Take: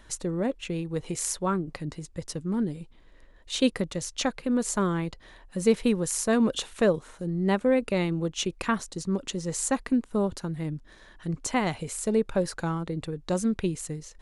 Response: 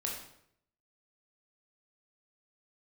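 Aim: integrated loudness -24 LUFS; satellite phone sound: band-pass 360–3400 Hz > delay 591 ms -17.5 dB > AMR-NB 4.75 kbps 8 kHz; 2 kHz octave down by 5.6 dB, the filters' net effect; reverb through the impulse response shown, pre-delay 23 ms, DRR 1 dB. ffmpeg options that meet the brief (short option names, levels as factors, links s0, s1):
-filter_complex "[0:a]equalizer=f=2000:t=o:g=-6.5,asplit=2[s0][s1];[1:a]atrim=start_sample=2205,adelay=23[s2];[s1][s2]afir=irnorm=-1:irlink=0,volume=0.668[s3];[s0][s3]amix=inputs=2:normalize=0,highpass=360,lowpass=3400,aecho=1:1:591:0.133,volume=2.24" -ar 8000 -c:a libopencore_amrnb -b:a 4750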